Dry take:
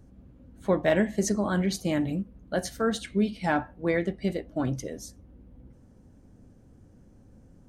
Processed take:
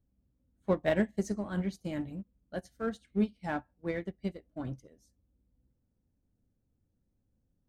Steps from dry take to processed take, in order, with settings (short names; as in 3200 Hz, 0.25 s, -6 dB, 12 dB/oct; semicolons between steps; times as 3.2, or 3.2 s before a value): low shelf 130 Hz +6 dB; in parallel at -9 dB: overloaded stage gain 28.5 dB; on the sum: upward expander 2.5:1, over -34 dBFS; gain -4.5 dB